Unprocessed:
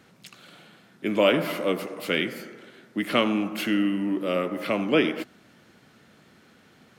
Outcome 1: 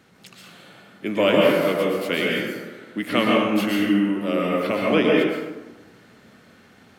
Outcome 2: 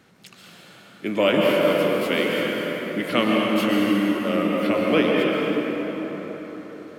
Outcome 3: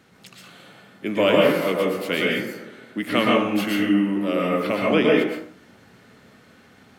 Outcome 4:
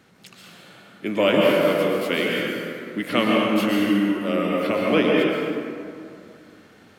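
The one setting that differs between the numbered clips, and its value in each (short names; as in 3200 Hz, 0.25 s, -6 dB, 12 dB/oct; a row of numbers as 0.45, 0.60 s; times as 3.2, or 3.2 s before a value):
plate-style reverb, RT60: 1.1, 5.1, 0.52, 2.4 s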